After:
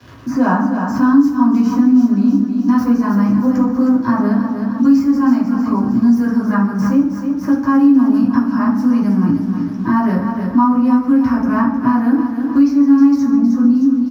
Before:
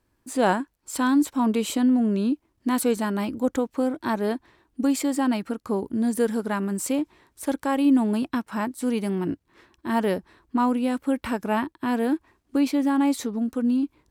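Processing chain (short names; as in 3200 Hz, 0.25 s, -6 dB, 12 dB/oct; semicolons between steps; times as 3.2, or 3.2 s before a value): tracing distortion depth 0.053 ms; EQ curve 280 Hz 0 dB, 390 Hz -19 dB, 900 Hz -2 dB, 1300 Hz 0 dB, 2100 Hz -6 dB, 3600 Hz -18 dB, 5600 Hz +8 dB, 8300 Hz -12 dB, 13000 Hz +4 dB; crackle 150/s -47 dBFS; feedback echo 0.311 s, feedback 39%, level -10 dB; reverb RT60 0.75 s, pre-delay 3 ms, DRR -7.5 dB; three-band squash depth 70%; gain -9.5 dB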